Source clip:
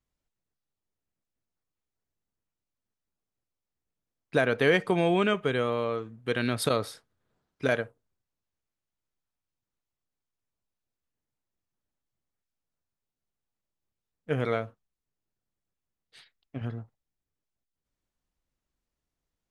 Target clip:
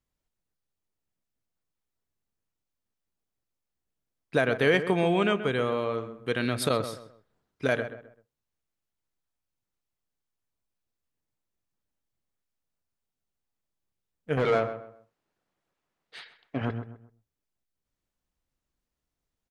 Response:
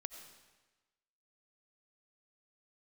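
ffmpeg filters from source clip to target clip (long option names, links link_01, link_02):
-filter_complex "[0:a]asettb=1/sr,asplit=3[link_01][link_02][link_03];[link_01]atrim=end=14.374[link_04];[link_02]atrim=start=14.37:end=16.71,asetpts=PTS-STARTPTS,afade=type=in:duration=0.004:curve=qsin,afade=type=out:start_time=2.336:duration=0.004:curve=qsin,asplit=2[link_05][link_06];[link_06]highpass=frequency=720:poles=1,volume=23dB,asoftclip=type=tanh:threshold=-14dB[link_07];[link_05][link_07]amix=inputs=2:normalize=0,lowpass=frequency=1300:poles=1,volume=-6dB[link_08];[link_03]atrim=start=16.706[link_09];[link_04][link_08]acrossfade=duration=0.004:curve1=hsin:curve2=qsin[link_10];[link_10][link_09]acrossfade=duration=0.004:curve1=qsin:curve2=hsin,asplit=2[link_11][link_12];[link_12]adelay=130,lowpass=frequency=1900:poles=1,volume=-10.5dB,asplit=2[link_13][link_14];[link_14]adelay=130,lowpass=frequency=1900:poles=1,volume=0.32,asplit=2[link_15][link_16];[link_16]adelay=130,lowpass=frequency=1900:poles=1,volume=0.32[link_17];[link_11][link_13][link_15][link_17]amix=inputs=4:normalize=0"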